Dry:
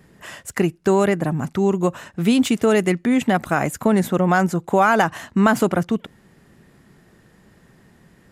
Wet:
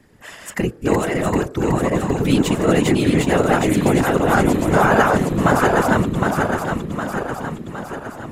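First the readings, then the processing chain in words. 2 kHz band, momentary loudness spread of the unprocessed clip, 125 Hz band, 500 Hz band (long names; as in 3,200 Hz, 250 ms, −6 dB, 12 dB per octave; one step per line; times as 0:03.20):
+3.0 dB, 7 LU, +4.5 dB, +2.0 dB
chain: feedback delay that plays each chunk backwards 381 ms, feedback 74%, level −1.5 dB
hum removal 197.9 Hz, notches 8
random phases in short frames
level −1 dB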